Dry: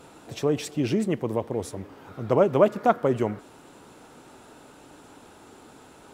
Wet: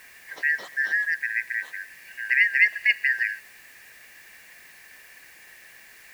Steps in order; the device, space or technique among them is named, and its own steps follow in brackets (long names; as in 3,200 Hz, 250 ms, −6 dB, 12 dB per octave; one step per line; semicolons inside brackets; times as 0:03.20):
split-band scrambled radio (band-splitting scrambler in four parts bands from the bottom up 3142; band-pass filter 380–3,000 Hz; white noise bed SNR 26 dB)